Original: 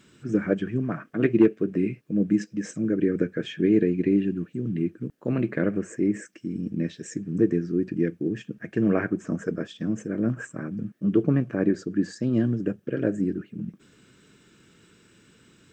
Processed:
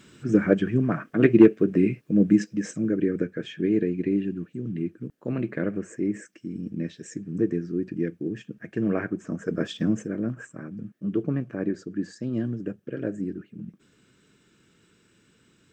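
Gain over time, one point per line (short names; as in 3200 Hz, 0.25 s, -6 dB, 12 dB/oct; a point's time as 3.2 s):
2.28 s +4 dB
3.34 s -3 dB
9.42 s -3 dB
9.7 s +7.5 dB
10.32 s -5 dB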